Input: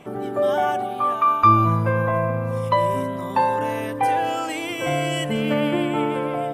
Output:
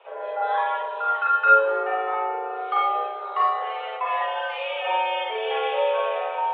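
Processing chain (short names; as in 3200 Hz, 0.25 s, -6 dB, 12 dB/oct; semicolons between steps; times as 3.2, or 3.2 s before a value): Schroeder reverb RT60 0.39 s, combs from 33 ms, DRR -5 dB; mistuned SSB +220 Hz 230–3200 Hz; gain -7 dB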